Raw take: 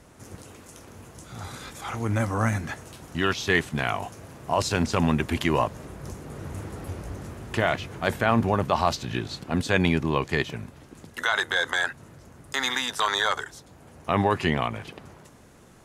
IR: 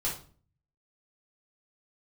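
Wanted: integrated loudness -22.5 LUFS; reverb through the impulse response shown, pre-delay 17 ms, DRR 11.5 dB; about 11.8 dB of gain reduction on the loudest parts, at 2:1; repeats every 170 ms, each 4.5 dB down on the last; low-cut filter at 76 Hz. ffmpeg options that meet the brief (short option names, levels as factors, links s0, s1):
-filter_complex "[0:a]highpass=76,acompressor=threshold=0.01:ratio=2,aecho=1:1:170|340|510|680|850|1020|1190|1360|1530:0.596|0.357|0.214|0.129|0.0772|0.0463|0.0278|0.0167|0.01,asplit=2[s0][s1];[1:a]atrim=start_sample=2205,adelay=17[s2];[s1][s2]afir=irnorm=-1:irlink=0,volume=0.15[s3];[s0][s3]amix=inputs=2:normalize=0,volume=4.47"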